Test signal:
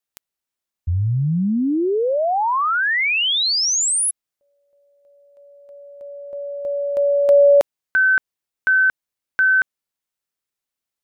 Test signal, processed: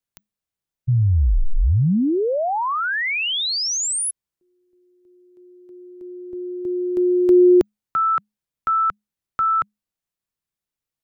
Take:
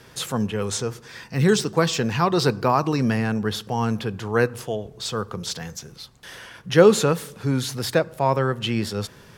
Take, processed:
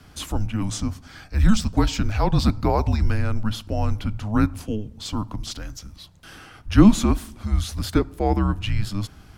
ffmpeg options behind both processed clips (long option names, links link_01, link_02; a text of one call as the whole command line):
ffmpeg -i in.wav -af "afreqshift=-210,lowshelf=frequency=340:gain=7.5,volume=-4dB" out.wav